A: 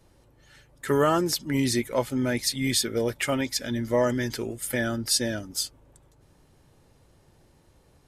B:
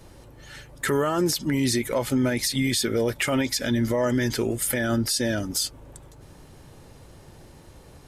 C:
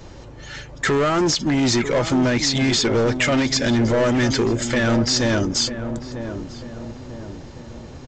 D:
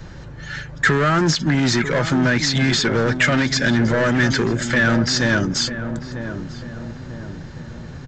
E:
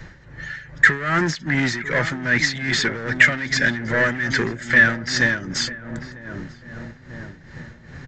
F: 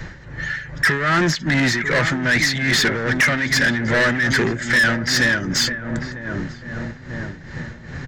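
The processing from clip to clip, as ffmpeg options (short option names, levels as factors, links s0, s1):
-filter_complex "[0:a]asplit=2[s0][s1];[s1]acompressor=threshold=0.02:ratio=6,volume=0.841[s2];[s0][s2]amix=inputs=2:normalize=0,alimiter=limit=0.0891:level=0:latency=1:release=64,volume=2"
-filter_complex "[0:a]aresample=16000,asoftclip=type=hard:threshold=0.0668,aresample=44100,asplit=2[s0][s1];[s1]adelay=944,lowpass=f=1000:p=1,volume=0.355,asplit=2[s2][s3];[s3]adelay=944,lowpass=f=1000:p=1,volume=0.5,asplit=2[s4][s5];[s5]adelay=944,lowpass=f=1000:p=1,volume=0.5,asplit=2[s6][s7];[s7]adelay=944,lowpass=f=1000:p=1,volume=0.5,asplit=2[s8][s9];[s9]adelay=944,lowpass=f=1000:p=1,volume=0.5,asplit=2[s10][s11];[s11]adelay=944,lowpass=f=1000:p=1,volume=0.5[s12];[s0][s2][s4][s6][s8][s10][s12]amix=inputs=7:normalize=0,volume=2.51"
-filter_complex "[0:a]equalizer=f=160:t=o:w=0.67:g=11,equalizer=f=1600:t=o:w=0.67:g=11,equalizer=f=4000:t=o:w=0.67:g=3,acrossover=split=120|850|1300[s0][s1][s2][s3];[s0]acompressor=mode=upward:threshold=0.0355:ratio=2.5[s4];[s4][s1][s2][s3]amix=inputs=4:normalize=0,volume=0.75"
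-af "equalizer=f=1900:w=2.7:g=12,tremolo=f=2.5:d=0.73,volume=0.708"
-filter_complex "[0:a]asplit=2[s0][s1];[s1]alimiter=limit=0.282:level=0:latency=1:release=83,volume=1.26[s2];[s0][s2]amix=inputs=2:normalize=0,asoftclip=type=tanh:threshold=0.251"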